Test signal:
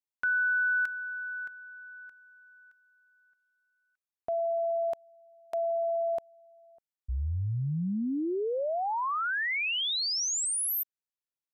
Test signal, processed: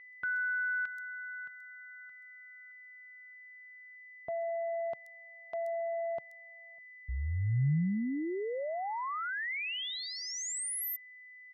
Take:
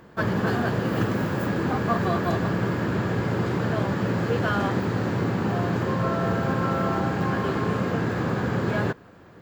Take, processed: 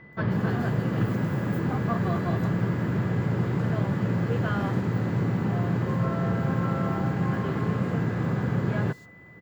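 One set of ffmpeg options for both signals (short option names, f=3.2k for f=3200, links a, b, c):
-filter_complex "[0:a]equalizer=f=140:w=1.2:g=9,aeval=exprs='val(0)+0.00631*sin(2*PI*2000*n/s)':c=same,acrossover=split=4700[a][b];[b]adelay=130[c];[a][c]amix=inputs=2:normalize=0,volume=-6dB"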